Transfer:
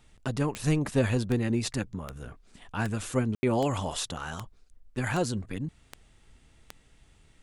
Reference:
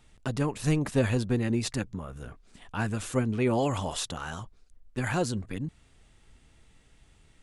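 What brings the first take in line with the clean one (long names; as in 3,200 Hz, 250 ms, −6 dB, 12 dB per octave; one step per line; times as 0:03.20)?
click removal
ambience match 0:03.35–0:03.43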